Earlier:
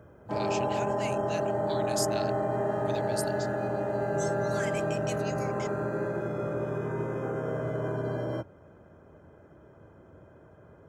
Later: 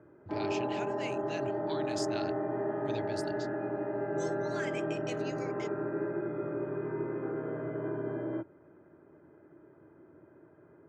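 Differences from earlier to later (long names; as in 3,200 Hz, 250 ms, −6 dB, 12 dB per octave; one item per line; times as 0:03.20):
background: add loudspeaker in its box 200–2,200 Hz, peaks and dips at 210 Hz −8 dB, 330 Hz +6 dB, 510 Hz −9 dB, 730 Hz −8 dB, 1,100 Hz −6 dB, 1,500 Hz −4 dB
master: add high-frequency loss of the air 120 metres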